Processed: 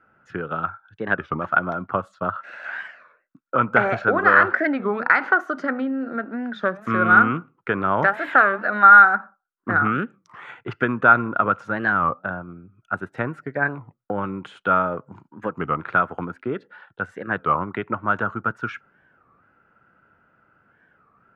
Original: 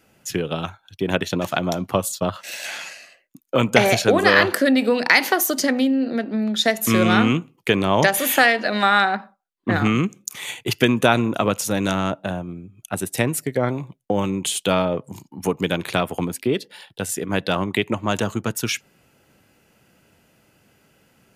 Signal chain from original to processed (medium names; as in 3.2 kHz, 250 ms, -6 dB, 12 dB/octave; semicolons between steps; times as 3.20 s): resonant low-pass 1.4 kHz, resonance Q 8.3; warped record 33 1/3 rpm, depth 250 cents; trim -6.5 dB